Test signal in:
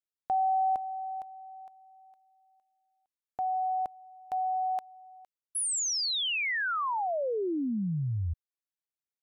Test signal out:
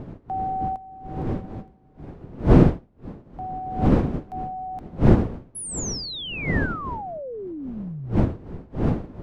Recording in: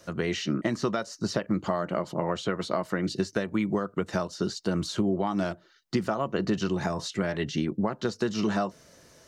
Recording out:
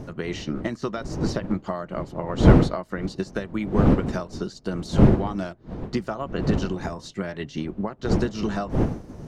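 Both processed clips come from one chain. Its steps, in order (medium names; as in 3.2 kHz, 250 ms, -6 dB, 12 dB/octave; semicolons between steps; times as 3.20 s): wind noise 260 Hz -27 dBFS; loudness maximiser +5 dB; upward expansion 1.5:1, over -42 dBFS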